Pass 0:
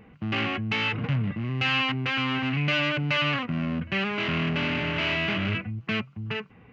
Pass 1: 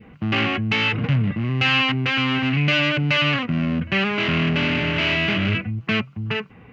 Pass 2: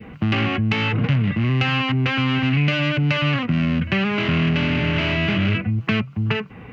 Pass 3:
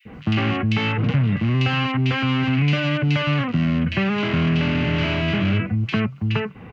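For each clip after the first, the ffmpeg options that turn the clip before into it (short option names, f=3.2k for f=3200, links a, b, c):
-af "adynamicequalizer=threshold=0.00891:dfrequency=990:dqfactor=1.1:tfrequency=990:tqfactor=1.1:attack=5:release=100:ratio=0.375:range=2:mode=cutabove:tftype=bell,volume=6.5dB"
-filter_complex "[0:a]acrossover=split=180|1500[a][b][c];[a]acompressor=threshold=-27dB:ratio=4[d];[b]acompressor=threshold=-32dB:ratio=4[e];[c]acompressor=threshold=-34dB:ratio=4[f];[d][e][f]amix=inputs=3:normalize=0,volume=7dB"
-filter_complex "[0:a]acrossover=split=2400[a][b];[a]adelay=50[c];[c][b]amix=inputs=2:normalize=0"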